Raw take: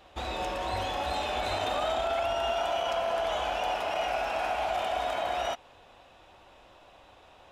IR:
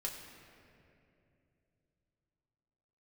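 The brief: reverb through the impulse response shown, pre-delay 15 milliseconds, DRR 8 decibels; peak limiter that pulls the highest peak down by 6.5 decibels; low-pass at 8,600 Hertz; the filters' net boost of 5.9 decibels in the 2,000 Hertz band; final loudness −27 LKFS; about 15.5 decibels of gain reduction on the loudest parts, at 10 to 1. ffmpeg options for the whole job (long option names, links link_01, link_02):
-filter_complex "[0:a]lowpass=8600,equalizer=frequency=2000:width_type=o:gain=8,acompressor=threshold=-41dB:ratio=10,alimiter=level_in=13.5dB:limit=-24dB:level=0:latency=1,volume=-13.5dB,asplit=2[link_01][link_02];[1:a]atrim=start_sample=2205,adelay=15[link_03];[link_02][link_03]afir=irnorm=-1:irlink=0,volume=-8dB[link_04];[link_01][link_04]amix=inputs=2:normalize=0,volume=18.5dB"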